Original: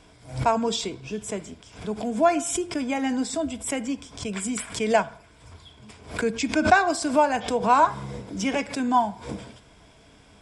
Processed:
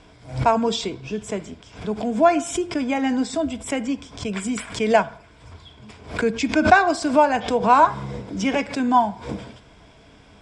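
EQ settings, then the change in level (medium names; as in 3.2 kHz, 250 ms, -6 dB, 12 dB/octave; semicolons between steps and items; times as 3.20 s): distance through air 69 m; +4.0 dB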